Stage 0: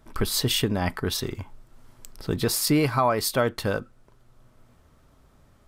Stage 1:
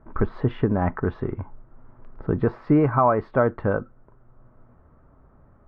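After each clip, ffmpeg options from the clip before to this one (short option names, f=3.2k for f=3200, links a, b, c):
-af "lowpass=f=1.5k:w=0.5412,lowpass=f=1.5k:w=1.3066,volume=3.5dB"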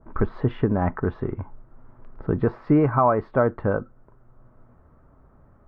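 -af "adynamicequalizer=threshold=0.0112:dfrequency=1700:dqfactor=0.7:tfrequency=1700:tqfactor=0.7:attack=5:release=100:ratio=0.375:range=2:mode=cutabove:tftype=highshelf"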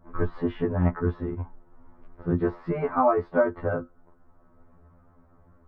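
-af "afftfilt=real='re*2*eq(mod(b,4),0)':imag='im*2*eq(mod(b,4),0)':win_size=2048:overlap=0.75"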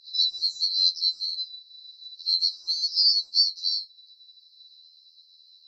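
-af "afftfilt=real='real(if(lt(b,736),b+184*(1-2*mod(floor(b/184),2)),b),0)':imag='imag(if(lt(b,736),b+184*(1-2*mod(floor(b/184),2)),b),0)':win_size=2048:overlap=0.75"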